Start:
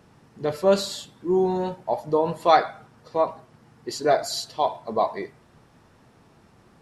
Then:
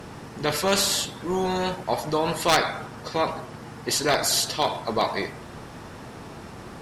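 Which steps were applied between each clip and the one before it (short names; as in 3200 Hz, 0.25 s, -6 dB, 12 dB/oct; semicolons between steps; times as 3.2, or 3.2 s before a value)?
one-sided clip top -11 dBFS; spectral compressor 2:1; gain +2.5 dB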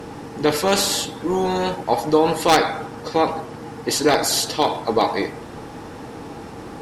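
small resonant body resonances 300/460/810 Hz, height 9 dB, ringing for 45 ms; gain +2 dB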